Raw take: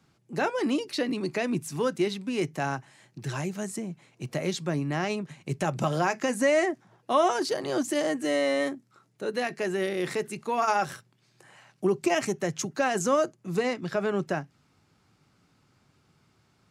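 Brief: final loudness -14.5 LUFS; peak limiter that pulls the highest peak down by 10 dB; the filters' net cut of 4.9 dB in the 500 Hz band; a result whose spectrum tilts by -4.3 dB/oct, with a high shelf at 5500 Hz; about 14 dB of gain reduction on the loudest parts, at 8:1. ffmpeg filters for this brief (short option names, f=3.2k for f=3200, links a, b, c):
-af "equalizer=f=500:t=o:g=-6.5,highshelf=f=5.5k:g=5.5,acompressor=threshold=-36dB:ratio=8,volume=30dB,alimiter=limit=-4dB:level=0:latency=1"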